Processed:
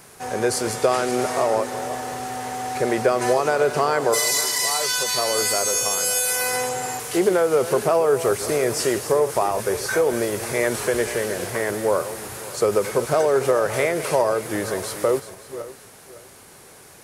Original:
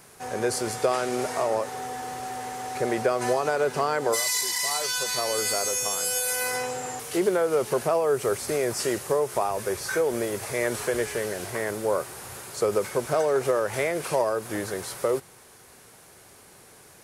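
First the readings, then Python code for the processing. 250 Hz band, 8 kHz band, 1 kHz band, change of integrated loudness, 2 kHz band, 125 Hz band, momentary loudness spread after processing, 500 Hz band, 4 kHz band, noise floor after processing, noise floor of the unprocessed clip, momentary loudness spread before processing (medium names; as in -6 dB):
+5.0 dB, +5.0 dB, +5.0 dB, +5.0 dB, +4.5 dB, +5.0 dB, 9 LU, +5.0 dB, +5.0 dB, -46 dBFS, -52 dBFS, 8 LU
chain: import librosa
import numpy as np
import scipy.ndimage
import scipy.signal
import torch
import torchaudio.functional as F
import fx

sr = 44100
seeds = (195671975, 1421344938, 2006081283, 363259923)

y = fx.reverse_delay_fb(x, sr, ms=279, feedback_pct=49, wet_db=-12.5)
y = y * 10.0 ** (4.5 / 20.0)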